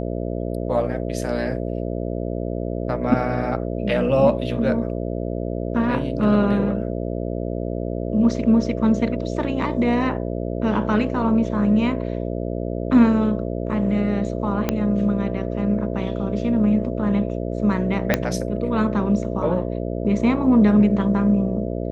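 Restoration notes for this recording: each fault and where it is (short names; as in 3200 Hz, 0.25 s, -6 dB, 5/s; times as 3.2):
buzz 60 Hz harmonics 11 -26 dBFS
14.69 pop -6 dBFS
18.14 pop -3 dBFS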